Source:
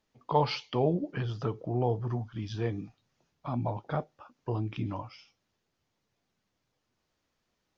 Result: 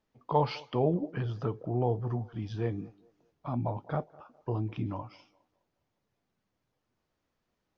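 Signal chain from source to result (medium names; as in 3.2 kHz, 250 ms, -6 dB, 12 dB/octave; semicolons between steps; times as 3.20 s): treble shelf 2.4 kHz -8.5 dB; band-passed feedback delay 205 ms, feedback 41%, band-pass 610 Hz, level -21 dB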